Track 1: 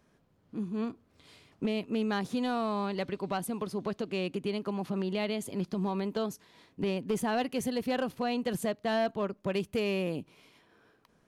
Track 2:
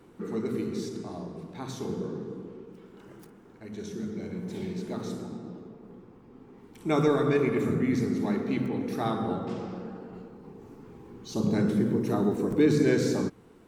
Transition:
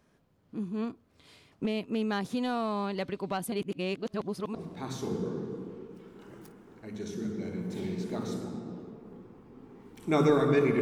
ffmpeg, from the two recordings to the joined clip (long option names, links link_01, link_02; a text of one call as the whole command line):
ffmpeg -i cue0.wav -i cue1.wav -filter_complex "[0:a]apad=whole_dur=10.81,atrim=end=10.81,asplit=2[link_01][link_02];[link_01]atrim=end=3.522[link_03];[link_02]atrim=start=3.518:end=4.552,asetpts=PTS-STARTPTS,areverse[link_04];[1:a]atrim=start=1.328:end=7.59[link_05];[link_03][link_04]acrossfade=duration=0.004:curve1=hsin:curve2=hsin[link_06];[link_06][link_05]acrossfade=duration=0.004:curve1=hsin:curve2=hsin" out.wav